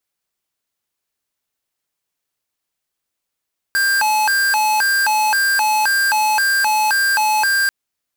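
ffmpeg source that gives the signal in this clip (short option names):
-f lavfi -i "aevalsrc='0.158*(2*lt(mod((1224*t+366/1.9*(0.5-abs(mod(1.9*t,1)-0.5))),1),0.5)-1)':d=3.94:s=44100"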